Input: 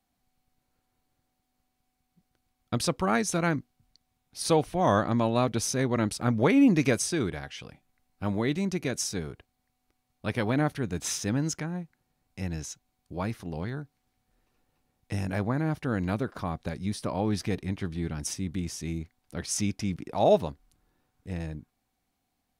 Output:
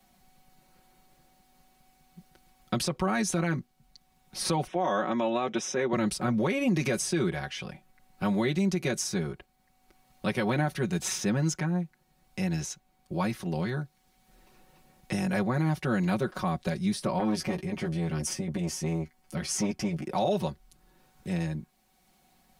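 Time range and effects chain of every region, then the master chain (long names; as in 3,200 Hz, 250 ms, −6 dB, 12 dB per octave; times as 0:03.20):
0:04.67–0:05.93: Butterworth band-reject 4,400 Hz, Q 3.2 + three-way crossover with the lows and the highs turned down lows −24 dB, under 220 Hz, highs −24 dB, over 6,200 Hz
0:17.18–0:20.08: notch filter 3,800 Hz, Q 7.9 + double-tracking delay 13 ms −5.5 dB + saturating transformer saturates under 520 Hz
whole clip: comb filter 5.4 ms, depth 84%; brickwall limiter −18 dBFS; multiband upward and downward compressor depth 40%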